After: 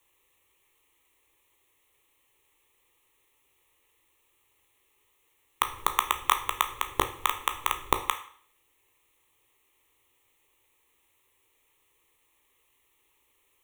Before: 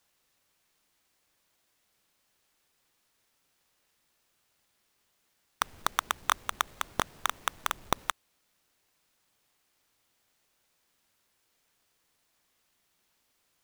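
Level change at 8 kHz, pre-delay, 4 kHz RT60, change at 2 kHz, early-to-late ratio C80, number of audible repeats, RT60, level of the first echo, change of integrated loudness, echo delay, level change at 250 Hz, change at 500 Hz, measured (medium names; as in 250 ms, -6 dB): +1.0 dB, 13 ms, 0.50 s, +1.5 dB, 15.0 dB, no echo, 0.50 s, no echo, +3.5 dB, no echo, +2.0 dB, +3.5 dB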